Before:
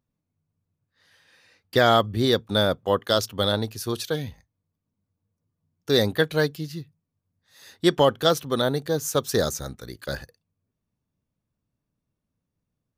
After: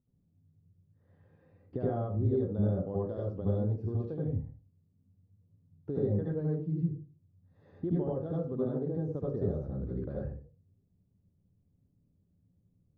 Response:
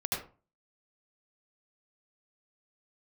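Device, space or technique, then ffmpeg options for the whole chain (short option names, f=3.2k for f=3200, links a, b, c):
television next door: -filter_complex "[0:a]acompressor=threshold=-38dB:ratio=3,lowpass=380[a];[1:a]atrim=start_sample=2205[b];[a][b]afir=irnorm=-1:irlink=0,volume=3dB"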